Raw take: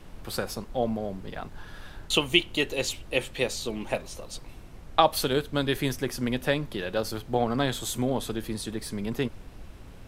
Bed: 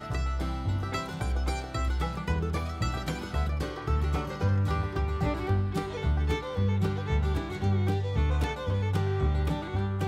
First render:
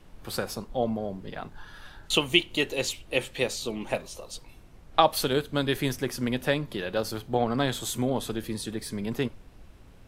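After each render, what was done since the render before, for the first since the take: noise print and reduce 6 dB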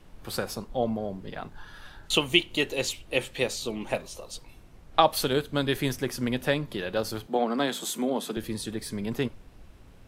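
7.27–8.37 steep high-pass 150 Hz 96 dB/oct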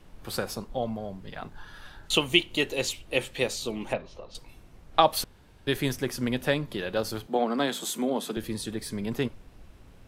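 0.78–1.42 bell 350 Hz -6.5 dB 1.6 oct; 3.93–4.35 air absorption 250 m; 5.24–5.67 room tone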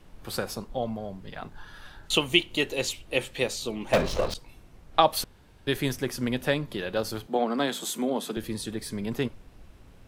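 3.93–4.34 sample leveller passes 5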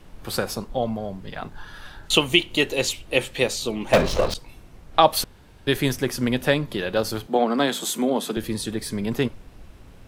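gain +5.5 dB; limiter -2 dBFS, peak gain reduction 3 dB

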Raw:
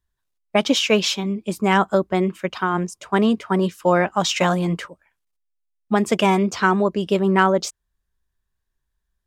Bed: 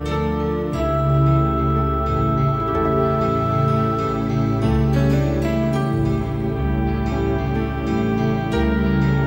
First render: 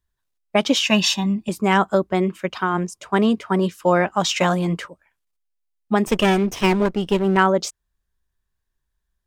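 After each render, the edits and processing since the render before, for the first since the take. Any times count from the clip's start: 0.85–1.49 comb 1.1 ms, depth 97%; 6.07–7.37 minimum comb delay 0.34 ms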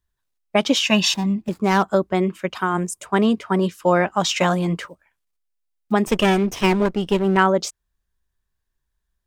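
1.14–1.83 median filter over 15 samples; 2.55–3.06 resonant high shelf 6700 Hz +8.5 dB, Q 1.5; 4.81–5.94 block floating point 7-bit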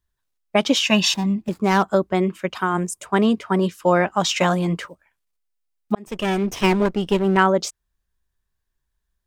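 5.95–6.55 fade in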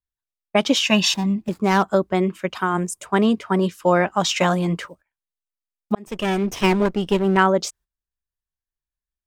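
gate -47 dBFS, range -16 dB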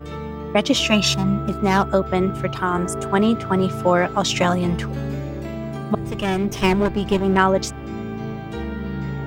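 add bed -9.5 dB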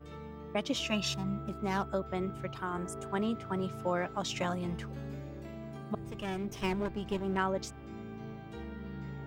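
gain -15 dB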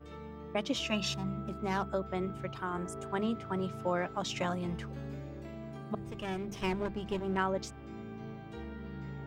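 high shelf 9700 Hz -6 dB; notches 50/100/150/200 Hz

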